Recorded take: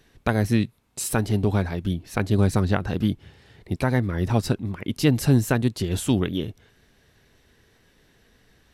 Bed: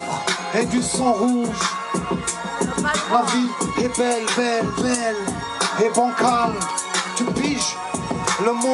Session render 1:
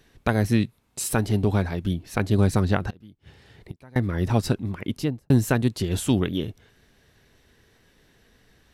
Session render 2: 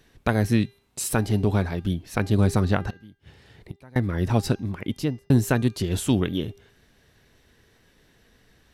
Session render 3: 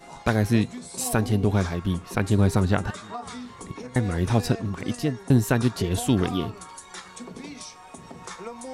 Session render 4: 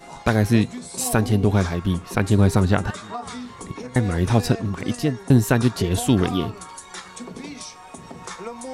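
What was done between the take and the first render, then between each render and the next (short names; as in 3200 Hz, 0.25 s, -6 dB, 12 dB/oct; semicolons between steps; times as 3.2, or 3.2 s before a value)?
2.9–3.96 flipped gate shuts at -24 dBFS, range -25 dB; 4.83–5.3 studio fade out
de-hum 399.9 Hz, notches 16
add bed -18 dB
gain +3.5 dB; limiter -2 dBFS, peak gain reduction 1 dB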